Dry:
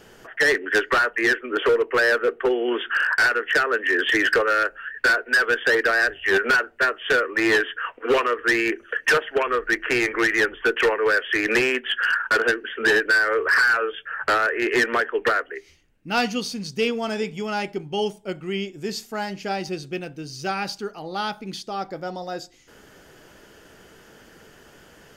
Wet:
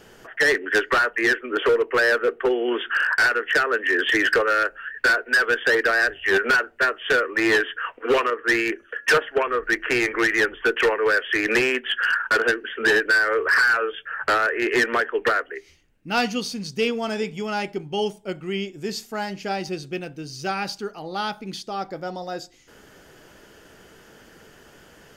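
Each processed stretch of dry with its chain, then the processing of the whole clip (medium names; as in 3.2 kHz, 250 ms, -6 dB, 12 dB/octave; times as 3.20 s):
8.30–9.63 s: de-hum 282.6 Hz, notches 6 + three bands expanded up and down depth 70%
whole clip: none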